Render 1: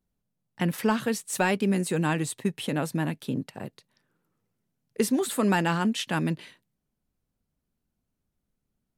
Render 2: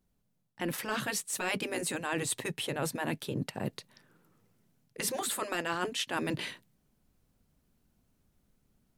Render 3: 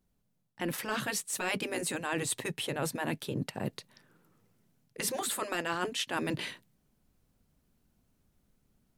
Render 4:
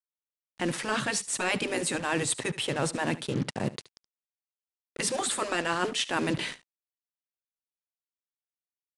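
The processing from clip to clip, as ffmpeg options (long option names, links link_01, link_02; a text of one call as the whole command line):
ffmpeg -i in.wav -af "dynaudnorm=framelen=560:gausssize=3:maxgain=5dB,afftfilt=real='re*lt(hypot(re,im),0.501)':imag='im*lt(hypot(re,im),0.501)':win_size=1024:overlap=0.75,areverse,acompressor=threshold=-35dB:ratio=5,areverse,volume=4dB" out.wav
ffmpeg -i in.wav -af anull out.wav
ffmpeg -i in.wav -af "acrusher=bits=6:mix=0:aa=0.5,aecho=1:1:73:0.133,aresample=22050,aresample=44100,volume=4.5dB" out.wav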